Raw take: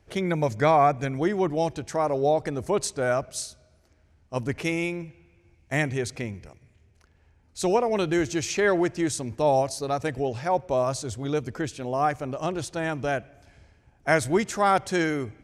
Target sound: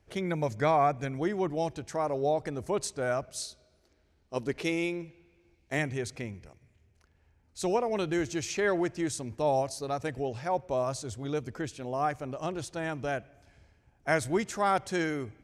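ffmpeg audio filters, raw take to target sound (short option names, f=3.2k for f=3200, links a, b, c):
-filter_complex "[0:a]asettb=1/sr,asplit=3[a][b][c];[a]atrim=end=3.404[d];[b]atrim=start=3.4:end=5.79,asetpts=PTS-STARTPTS,afade=t=in:d=0.004:c=qsin,afade=t=out:st=2.386:d=0.004:c=qsin,equalizer=f=100:t=o:w=0.67:g=-9,equalizer=f=400:t=o:w=0.67:g=6,equalizer=f=4k:t=o:w=0.67:g=7[e];[c]atrim=start=5.786[f];[d][e]acrossfade=d=0.004:c1=hsin:c2=qsin[g];[g][f]acrossfade=d=0.004:c1=qsin:c2=hsin,volume=-5.5dB"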